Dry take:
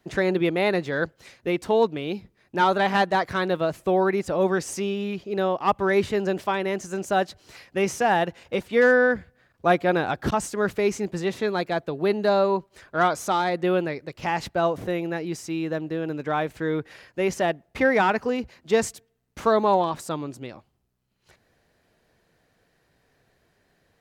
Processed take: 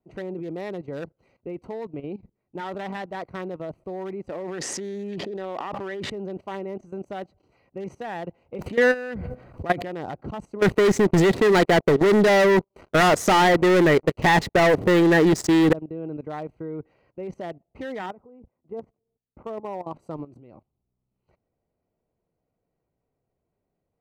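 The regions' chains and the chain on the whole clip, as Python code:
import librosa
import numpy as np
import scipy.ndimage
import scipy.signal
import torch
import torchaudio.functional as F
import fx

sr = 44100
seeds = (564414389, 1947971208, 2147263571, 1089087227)

y = fx.chain(x, sr, fx.highpass(hz=210.0, slope=12),
    fx.air_absorb(metres=73.0),
    fx.env_flatten(amount_pct=100), at=(4.29, 6.1))
y = fx.chain(y, sr, fx.high_shelf(hz=7200.0, db=6.5),
    fx.env_flatten(amount_pct=70), at=(8.59, 9.88))
y = fx.chain(y, sr, fx.leveller(passes=5),
    fx.peak_eq(hz=410.0, db=3.5, octaves=0.48), at=(10.62, 15.73))
y = fx.chain(y, sr, fx.lowpass(hz=1300.0, slope=12),
    fx.low_shelf(hz=280.0, db=-3.0),
    fx.level_steps(step_db=11), at=(18.06, 19.87))
y = fx.wiener(y, sr, points=25)
y = fx.peak_eq(y, sr, hz=1900.0, db=10.0, octaves=0.2)
y = fx.level_steps(y, sr, step_db=16)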